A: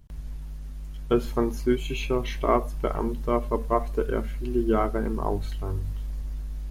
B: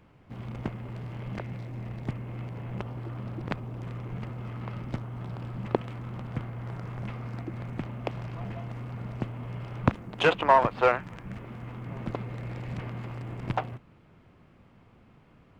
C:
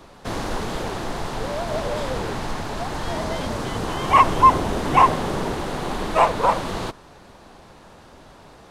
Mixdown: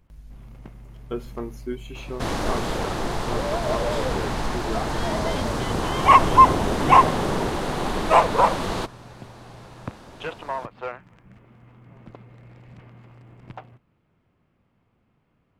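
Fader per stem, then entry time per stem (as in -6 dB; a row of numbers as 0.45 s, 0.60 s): -8.0 dB, -10.5 dB, +1.0 dB; 0.00 s, 0.00 s, 1.95 s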